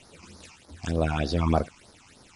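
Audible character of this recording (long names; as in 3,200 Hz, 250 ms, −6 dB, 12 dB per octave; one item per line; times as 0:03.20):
a quantiser's noise floor 8 bits, dither none
phaser sweep stages 8, 3.3 Hz, lowest notch 470–2,800 Hz
MP3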